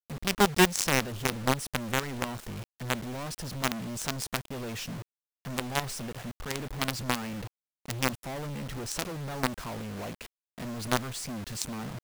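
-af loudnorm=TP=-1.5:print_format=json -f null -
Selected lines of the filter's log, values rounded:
"input_i" : "-32.1",
"input_tp" : "-8.2",
"input_lra" : "2.4",
"input_thresh" : "-42.4",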